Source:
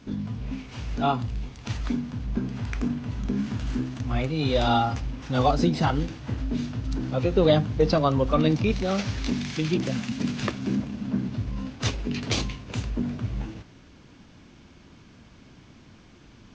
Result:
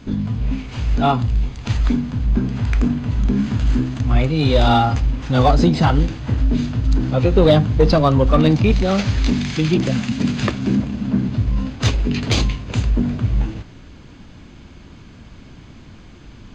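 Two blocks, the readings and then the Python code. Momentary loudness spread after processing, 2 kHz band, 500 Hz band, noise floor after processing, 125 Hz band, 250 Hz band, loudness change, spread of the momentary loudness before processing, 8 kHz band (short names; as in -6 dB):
8 LU, +7.0 dB, +6.5 dB, -42 dBFS, +10.0 dB, +8.0 dB, +8.5 dB, 11 LU, n/a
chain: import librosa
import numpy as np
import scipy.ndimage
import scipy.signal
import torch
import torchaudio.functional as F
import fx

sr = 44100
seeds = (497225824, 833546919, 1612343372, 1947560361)

p1 = fx.low_shelf(x, sr, hz=77.0, db=10.0)
p2 = fx.notch(p1, sr, hz=5600.0, q=8.9)
p3 = np.clip(p2, -10.0 ** (-18.0 / 20.0), 10.0 ** (-18.0 / 20.0))
p4 = p2 + F.gain(torch.from_numpy(p3), -4.0).numpy()
y = F.gain(torch.from_numpy(p4), 3.0).numpy()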